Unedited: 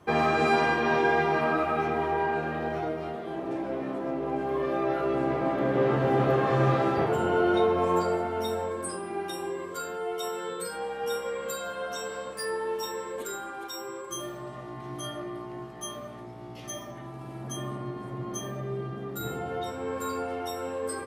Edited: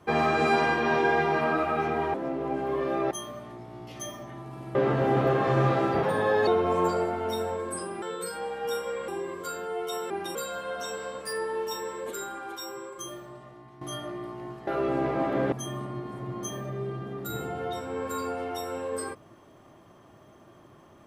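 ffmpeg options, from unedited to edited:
-filter_complex "[0:a]asplit=13[a][b][c][d][e][f][g][h][i][j][k][l][m];[a]atrim=end=2.142[n];[b]atrim=start=3.958:end=4.932[o];[c]atrim=start=15.788:end=17.432[p];[d]atrim=start=5.778:end=7.064[q];[e]atrim=start=7.06:end=7.59,asetpts=PTS-STARTPTS,asetrate=52920,aresample=44100[r];[f]atrim=start=7.586:end=9.142[s];[g]atrim=start=10.408:end=11.472[t];[h]atrim=start=9.388:end=10.412[u];[i]atrim=start=9.138:end=9.392[v];[j]atrim=start=11.468:end=14.93,asetpts=PTS-STARTPTS,afade=t=out:st=2.222:d=1.24:silence=0.211349[w];[k]atrim=start=14.93:end=15.792,asetpts=PTS-STARTPTS,afade=t=in:d=0.004:c=hsin:silence=0.211349[x];[l]atrim=start=4.928:end=5.782[y];[m]atrim=start=17.428[z];[n][o]acrossfade=d=0.004:c1=hsin:c2=hsin[aa];[aa][p]acrossfade=d=0.004:c1=hsin:c2=hsin[ab];[ab][q]acrossfade=d=0.004:c1=hsin:c2=hsin[ac];[ac][r]acrossfade=d=0.004:c1=hsin:c2=hsin[ad];[ad][s]acrossfade=d=0.004:c1=hsin:c2=hsin[ae];[ae][t]acrossfade=d=0.004:c1=hsin:c2=hsin[af];[af][u]acrossfade=d=0.004:c1=hsin:c2=hsin[ag];[ag][v]acrossfade=d=0.004:c1=hsin:c2=hsin[ah];[w][x]concat=n=2:v=0:a=1[ai];[ah][ai]acrossfade=d=0.004:c1=hsin:c2=hsin[aj];[aj][y]acrossfade=d=0.004:c1=hsin:c2=hsin[ak];[ak][z]acrossfade=d=0.004:c1=hsin:c2=hsin"

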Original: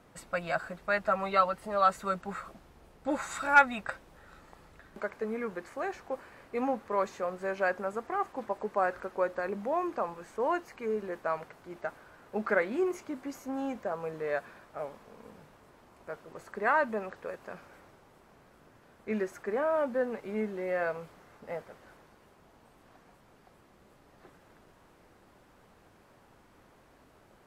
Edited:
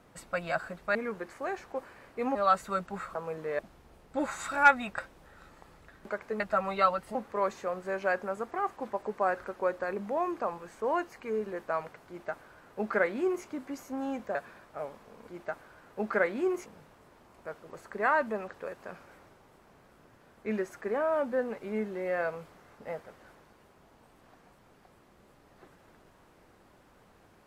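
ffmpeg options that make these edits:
-filter_complex "[0:a]asplit=10[a][b][c][d][e][f][g][h][i][j];[a]atrim=end=0.952[k];[b]atrim=start=5.308:end=6.712[l];[c]atrim=start=1.698:end=2.502[m];[d]atrim=start=13.908:end=14.352[n];[e]atrim=start=2.498:end=5.312[o];[f]atrim=start=0.948:end=1.702[p];[g]atrim=start=6.708:end=13.912[q];[h]atrim=start=14.348:end=15.282[r];[i]atrim=start=11.638:end=13.022[s];[j]atrim=start=15.278[t];[k][l]acrossfade=d=0.004:c1=hsin:c2=hsin[u];[u][m]acrossfade=d=0.004:c1=hsin:c2=hsin[v];[v][n]acrossfade=d=0.004:c1=hsin:c2=hsin[w];[w][o]acrossfade=d=0.004:c1=hsin:c2=hsin[x];[x][p]acrossfade=d=0.004:c1=hsin:c2=hsin[y];[y][q]acrossfade=d=0.004:c1=hsin:c2=hsin[z];[z][r]acrossfade=d=0.004:c1=hsin:c2=hsin[aa];[aa][s]acrossfade=d=0.004:c1=hsin:c2=hsin[ab];[ab][t]acrossfade=d=0.004:c1=hsin:c2=hsin"

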